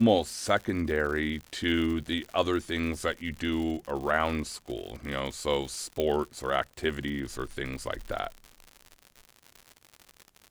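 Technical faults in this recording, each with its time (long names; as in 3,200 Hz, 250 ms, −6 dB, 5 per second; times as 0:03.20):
surface crackle 110 per second −35 dBFS
0:06.00: click −16 dBFS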